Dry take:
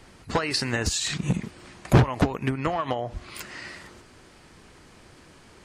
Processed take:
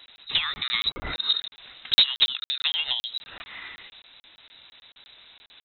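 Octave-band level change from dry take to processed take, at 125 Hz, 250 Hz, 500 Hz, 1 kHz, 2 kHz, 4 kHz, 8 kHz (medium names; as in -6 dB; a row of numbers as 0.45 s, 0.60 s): under -20 dB, under -20 dB, -19.5 dB, -10.5 dB, -0.5 dB, +11.5 dB, under -20 dB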